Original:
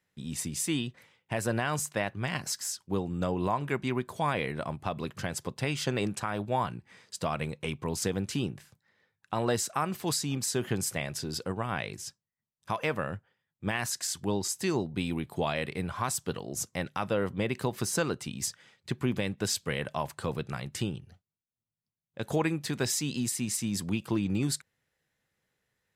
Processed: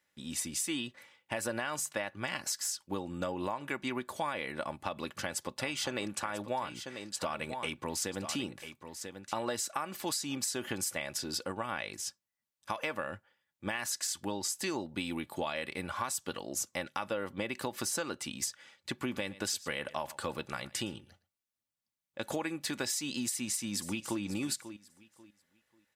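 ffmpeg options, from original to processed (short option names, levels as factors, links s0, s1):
-filter_complex "[0:a]asettb=1/sr,asplit=3[s0][s1][s2];[s0]atrim=end=4.604[s3];[s1]atrim=start=4.6:end=9.34,asetpts=PTS-STARTPTS,afade=t=in:d=0.004:c=qsin,afade=t=out:st=4.736:d=0.004:c=qsin,aecho=1:1:991:0.251,atrim=end_sample=209034[s4];[s2]atrim=start=9.336[s5];[s3][s4]acrossfade=d=0.004:c1=hsin:c2=qsin[s6];[s6][s5]acrossfade=d=0.004:c1=qsin:c2=hsin,asplit=3[s7][s8][s9];[s7]afade=t=out:st=19.05:d=0.02[s10];[s8]aecho=1:1:114:0.0891,afade=t=in:st=19.05:d=0.02,afade=t=out:st=22.46:d=0.02[s11];[s9]afade=t=in:st=22.46:d=0.02[s12];[s10][s11][s12]amix=inputs=3:normalize=0,asplit=2[s13][s14];[s14]afade=t=in:st=23.21:d=0.01,afade=t=out:st=24.22:d=0.01,aecho=0:1:540|1080|1620:0.177828|0.044457|0.0111142[s15];[s13][s15]amix=inputs=2:normalize=0,lowshelf=f=320:g=-10.5,aecho=1:1:3.5:0.44,acompressor=threshold=0.0224:ratio=6,volume=1.26"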